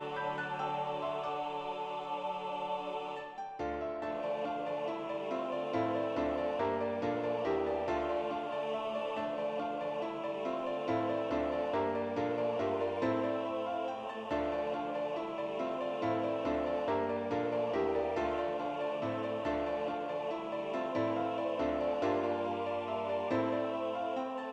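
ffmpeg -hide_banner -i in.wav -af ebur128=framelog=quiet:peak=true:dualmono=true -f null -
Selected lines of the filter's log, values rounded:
Integrated loudness:
  I:         -32.2 LUFS
  Threshold: -42.2 LUFS
Loudness range:
  LRA:         3.7 LU
  Threshold: -52.2 LUFS
  LRA low:   -34.7 LUFS
  LRA high:  -31.0 LUFS
True peak:
  Peak:      -19.4 dBFS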